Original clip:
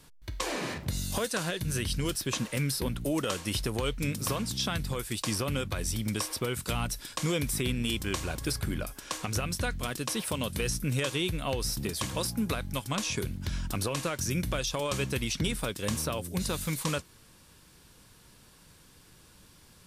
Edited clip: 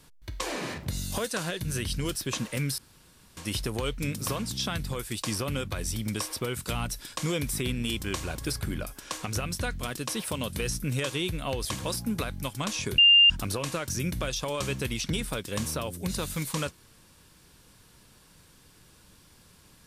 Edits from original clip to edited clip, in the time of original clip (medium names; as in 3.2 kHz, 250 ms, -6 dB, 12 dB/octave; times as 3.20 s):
2.78–3.37 s: room tone
11.65–11.96 s: delete
13.29–13.61 s: bleep 2.8 kHz -13.5 dBFS